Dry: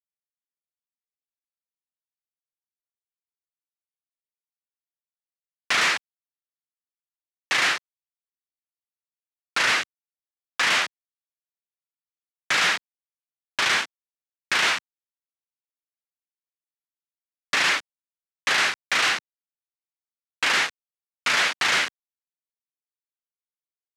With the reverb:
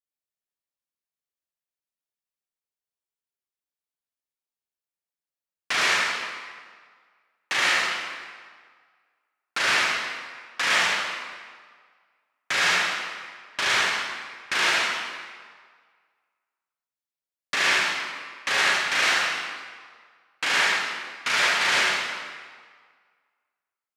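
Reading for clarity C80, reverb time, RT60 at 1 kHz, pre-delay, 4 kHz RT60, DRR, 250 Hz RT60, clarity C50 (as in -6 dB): 0.5 dB, 1.7 s, 1.8 s, 39 ms, 1.3 s, -3.5 dB, 1.6 s, -2.5 dB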